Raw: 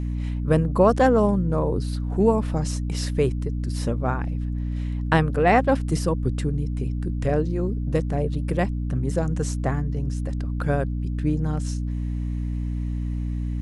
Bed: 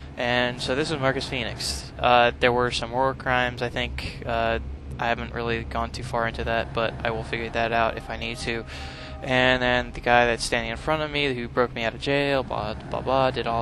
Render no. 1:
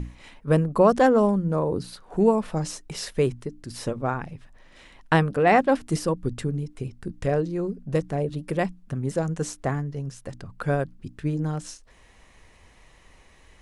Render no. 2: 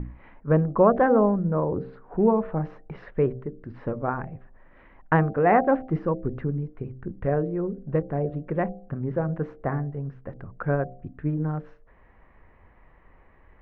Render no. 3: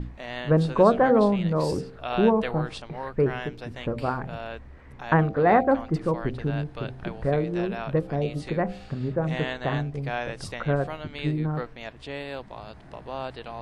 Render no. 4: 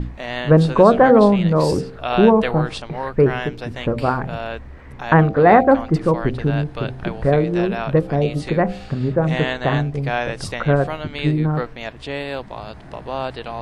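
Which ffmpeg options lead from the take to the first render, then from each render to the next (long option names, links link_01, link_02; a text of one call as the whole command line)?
ffmpeg -i in.wav -af "bandreject=frequency=60:width_type=h:width=6,bandreject=frequency=120:width_type=h:width=6,bandreject=frequency=180:width_type=h:width=6,bandreject=frequency=240:width_type=h:width=6,bandreject=frequency=300:width_type=h:width=6" out.wav
ffmpeg -i in.wav -af "lowpass=frequency=1800:width=0.5412,lowpass=frequency=1800:width=1.3066,bandreject=frequency=65.08:width_type=h:width=4,bandreject=frequency=130.16:width_type=h:width=4,bandreject=frequency=195.24:width_type=h:width=4,bandreject=frequency=260.32:width_type=h:width=4,bandreject=frequency=325.4:width_type=h:width=4,bandreject=frequency=390.48:width_type=h:width=4,bandreject=frequency=455.56:width_type=h:width=4,bandreject=frequency=520.64:width_type=h:width=4,bandreject=frequency=585.72:width_type=h:width=4,bandreject=frequency=650.8:width_type=h:width=4,bandreject=frequency=715.88:width_type=h:width=4,bandreject=frequency=780.96:width_type=h:width=4" out.wav
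ffmpeg -i in.wav -i bed.wav -filter_complex "[1:a]volume=-12.5dB[link_01];[0:a][link_01]amix=inputs=2:normalize=0" out.wav
ffmpeg -i in.wav -af "volume=8dB,alimiter=limit=-2dB:level=0:latency=1" out.wav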